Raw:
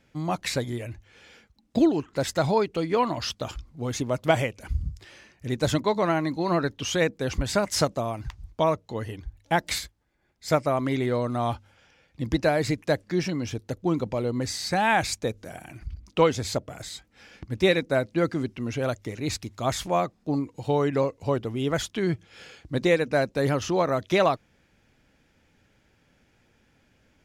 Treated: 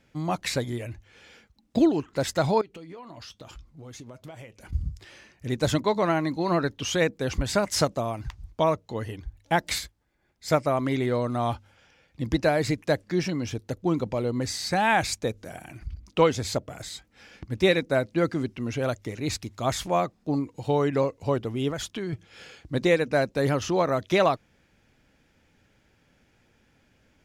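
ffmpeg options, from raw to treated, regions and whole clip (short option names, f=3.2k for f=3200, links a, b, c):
-filter_complex "[0:a]asettb=1/sr,asplit=3[a][b][c];[a]atrim=end=2.614[d];[b]atrim=start=2.61:end=4.73,asetpts=PTS-STARTPTS,afade=t=in:d=0.004:c=qsin,afade=t=out:st=2.116:d=0.004:c=qsin,acompressor=threshold=-35dB:ratio=10:attack=3.2:release=140:knee=1:detection=peak,flanger=delay=5.4:depth=1.9:regen=-71:speed=1:shape=triangular[e];[c]atrim=start=4.726[f];[d][e]acrossfade=d=0.004:c1=hsin:c2=qsin[g];[g][f]acrossfade=d=0.004:c1=qsin:c2=hsin,asettb=1/sr,asplit=3[h][i][j];[h]atrim=end=21.704[k];[i]atrim=start=21.7:end=22.13,asetpts=PTS-STARTPTS,afade=t=in:d=0.004:c=qsin,afade=t=out:st=0.426:d=0.004:c=qsin,bandreject=f=2k:w=25,acompressor=threshold=-28dB:ratio=5:attack=3.2:release=140:knee=1:detection=peak[l];[j]atrim=start=22.126[m];[k][l]acrossfade=d=0.004:c1=hsin:c2=qsin[n];[n][m]acrossfade=d=0.004:c1=qsin:c2=hsin"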